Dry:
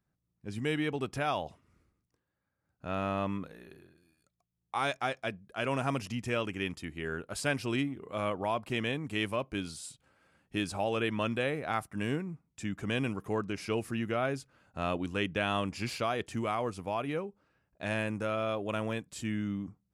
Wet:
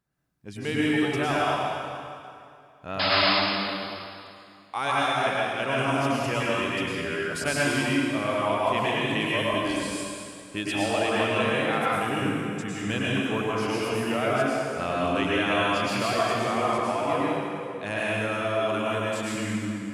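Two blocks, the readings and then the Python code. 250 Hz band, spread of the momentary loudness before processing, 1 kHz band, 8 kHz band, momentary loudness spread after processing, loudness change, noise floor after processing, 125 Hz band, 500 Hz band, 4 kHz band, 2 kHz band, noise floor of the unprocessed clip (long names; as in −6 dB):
+7.0 dB, 8 LU, +9.5 dB, +9.0 dB, 10 LU, +8.0 dB, −49 dBFS, +4.5 dB, +8.0 dB, +11.5 dB, +10.0 dB, −83 dBFS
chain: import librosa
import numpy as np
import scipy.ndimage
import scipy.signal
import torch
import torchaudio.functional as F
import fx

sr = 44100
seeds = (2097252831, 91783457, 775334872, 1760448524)

y = fx.vibrato(x, sr, rate_hz=6.9, depth_cents=15.0)
y = fx.low_shelf(y, sr, hz=270.0, db=-5.0)
y = fx.spec_paint(y, sr, seeds[0], shape='noise', start_s=2.99, length_s=0.21, low_hz=560.0, high_hz=5200.0, level_db=-28.0)
y = fx.dereverb_blind(y, sr, rt60_s=0.81)
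y = fx.rev_plate(y, sr, seeds[1], rt60_s=2.5, hf_ratio=0.85, predelay_ms=90, drr_db=-7.0)
y = y * 10.0 ** (2.5 / 20.0)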